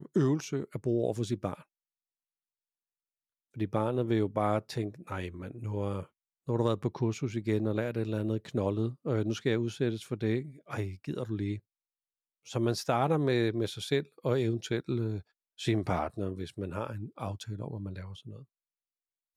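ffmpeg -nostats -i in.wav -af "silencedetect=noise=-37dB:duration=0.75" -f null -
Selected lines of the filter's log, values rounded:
silence_start: 1.54
silence_end: 3.57 | silence_duration: 2.03
silence_start: 11.57
silence_end: 12.51 | silence_duration: 0.94
silence_start: 18.36
silence_end: 19.37 | silence_duration: 1.00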